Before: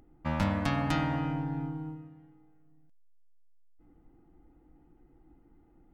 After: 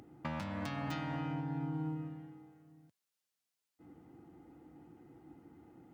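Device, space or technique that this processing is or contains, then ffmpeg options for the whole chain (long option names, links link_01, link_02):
broadcast voice chain: -af "highpass=frequency=90:width=0.5412,highpass=frequency=90:width=1.3066,deesser=0.9,acompressor=threshold=-40dB:ratio=5,equalizer=frequency=5300:width_type=o:width=2.4:gain=3.5,alimiter=level_in=10.5dB:limit=-24dB:level=0:latency=1:release=351,volume=-10.5dB,volume=6dB"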